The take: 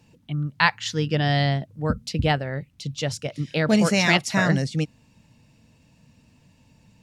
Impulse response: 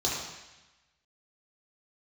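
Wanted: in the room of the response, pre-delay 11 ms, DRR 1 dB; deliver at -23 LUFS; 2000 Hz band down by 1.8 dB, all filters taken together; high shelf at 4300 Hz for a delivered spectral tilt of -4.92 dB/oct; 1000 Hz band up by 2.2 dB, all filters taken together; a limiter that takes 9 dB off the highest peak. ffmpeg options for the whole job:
-filter_complex "[0:a]equalizer=f=1k:t=o:g=3.5,equalizer=f=2k:t=o:g=-5,highshelf=f=4.3k:g=9,alimiter=limit=-11.5dB:level=0:latency=1,asplit=2[a][b];[1:a]atrim=start_sample=2205,adelay=11[c];[b][c]afir=irnorm=-1:irlink=0,volume=-10dB[d];[a][d]amix=inputs=2:normalize=0,volume=-3dB"

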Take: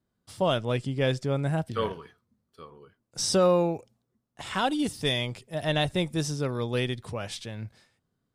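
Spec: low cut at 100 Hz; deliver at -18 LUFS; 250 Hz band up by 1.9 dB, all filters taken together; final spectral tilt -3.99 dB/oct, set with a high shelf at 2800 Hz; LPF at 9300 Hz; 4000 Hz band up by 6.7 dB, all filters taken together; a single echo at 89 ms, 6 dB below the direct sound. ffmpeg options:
-af "highpass=100,lowpass=9.3k,equalizer=f=250:t=o:g=3,highshelf=f=2.8k:g=5,equalizer=f=4k:t=o:g=4.5,aecho=1:1:89:0.501,volume=7dB"

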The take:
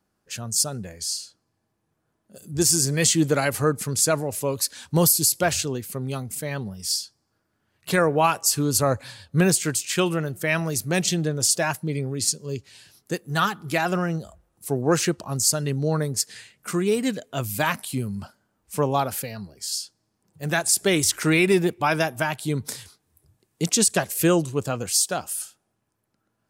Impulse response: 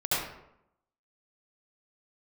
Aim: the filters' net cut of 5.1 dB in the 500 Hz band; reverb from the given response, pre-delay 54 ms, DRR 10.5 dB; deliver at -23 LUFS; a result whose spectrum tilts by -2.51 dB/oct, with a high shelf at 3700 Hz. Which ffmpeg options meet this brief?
-filter_complex "[0:a]equalizer=f=500:t=o:g=-7,highshelf=f=3.7k:g=7.5,asplit=2[a][b];[1:a]atrim=start_sample=2205,adelay=54[c];[b][c]afir=irnorm=-1:irlink=0,volume=-21dB[d];[a][d]amix=inputs=2:normalize=0,volume=-3.5dB"

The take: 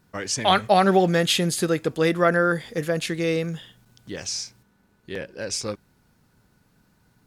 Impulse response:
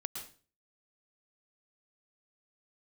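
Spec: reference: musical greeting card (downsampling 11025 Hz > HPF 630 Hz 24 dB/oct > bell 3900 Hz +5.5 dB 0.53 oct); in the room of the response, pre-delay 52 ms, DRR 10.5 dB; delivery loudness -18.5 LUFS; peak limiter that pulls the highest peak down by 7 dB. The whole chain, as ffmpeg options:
-filter_complex "[0:a]alimiter=limit=-12dB:level=0:latency=1,asplit=2[a][b];[1:a]atrim=start_sample=2205,adelay=52[c];[b][c]afir=irnorm=-1:irlink=0,volume=-10dB[d];[a][d]amix=inputs=2:normalize=0,aresample=11025,aresample=44100,highpass=f=630:w=0.5412,highpass=f=630:w=1.3066,equalizer=f=3.9k:t=o:w=0.53:g=5.5,volume=8.5dB"

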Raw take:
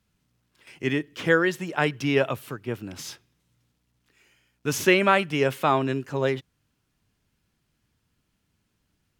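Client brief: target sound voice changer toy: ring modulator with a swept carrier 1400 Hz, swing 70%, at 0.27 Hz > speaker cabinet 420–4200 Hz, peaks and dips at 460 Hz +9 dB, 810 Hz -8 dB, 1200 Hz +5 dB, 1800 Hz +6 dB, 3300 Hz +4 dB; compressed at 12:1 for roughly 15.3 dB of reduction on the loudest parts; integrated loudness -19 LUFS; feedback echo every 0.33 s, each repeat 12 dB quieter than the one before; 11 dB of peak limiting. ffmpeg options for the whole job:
-af "acompressor=threshold=-29dB:ratio=12,alimiter=level_in=1.5dB:limit=-24dB:level=0:latency=1,volume=-1.5dB,aecho=1:1:330|660|990:0.251|0.0628|0.0157,aeval=exprs='val(0)*sin(2*PI*1400*n/s+1400*0.7/0.27*sin(2*PI*0.27*n/s))':c=same,highpass=420,equalizer=f=460:t=q:w=4:g=9,equalizer=f=810:t=q:w=4:g=-8,equalizer=f=1.2k:t=q:w=4:g=5,equalizer=f=1.8k:t=q:w=4:g=6,equalizer=f=3.3k:t=q:w=4:g=4,lowpass=f=4.2k:w=0.5412,lowpass=f=4.2k:w=1.3066,volume=19.5dB"

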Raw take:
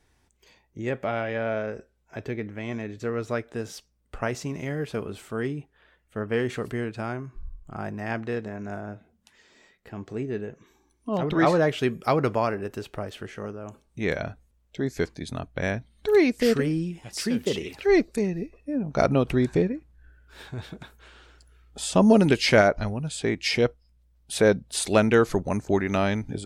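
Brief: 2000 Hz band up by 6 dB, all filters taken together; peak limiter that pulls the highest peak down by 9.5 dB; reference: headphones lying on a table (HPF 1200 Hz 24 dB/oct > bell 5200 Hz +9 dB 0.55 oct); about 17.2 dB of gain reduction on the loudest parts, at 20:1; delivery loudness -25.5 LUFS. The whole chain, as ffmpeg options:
-af "equalizer=f=2k:t=o:g=7.5,acompressor=threshold=-29dB:ratio=20,alimiter=limit=-24dB:level=0:latency=1,highpass=f=1.2k:w=0.5412,highpass=f=1.2k:w=1.3066,equalizer=f=5.2k:t=o:w=0.55:g=9,volume=13.5dB"

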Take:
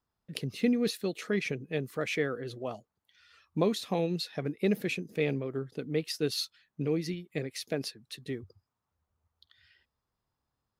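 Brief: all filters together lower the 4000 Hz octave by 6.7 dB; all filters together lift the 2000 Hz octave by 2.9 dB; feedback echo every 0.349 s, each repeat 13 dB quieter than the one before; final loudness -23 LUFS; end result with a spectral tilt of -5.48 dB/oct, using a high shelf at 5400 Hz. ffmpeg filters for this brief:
-af "equalizer=f=2k:t=o:g=6.5,equalizer=f=4k:t=o:g=-8,highshelf=f=5.4k:g=-4,aecho=1:1:349|698|1047:0.224|0.0493|0.0108,volume=9.5dB"

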